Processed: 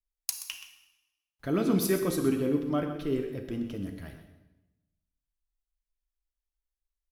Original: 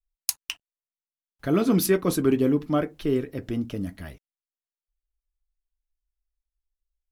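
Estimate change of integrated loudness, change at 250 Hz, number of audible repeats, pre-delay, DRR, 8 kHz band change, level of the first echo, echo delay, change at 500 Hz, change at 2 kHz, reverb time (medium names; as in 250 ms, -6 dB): -5.5 dB, -5.0 dB, 1, 29 ms, 5.5 dB, -5.0 dB, -12.0 dB, 127 ms, -5.0 dB, -5.0 dB, 0.95 s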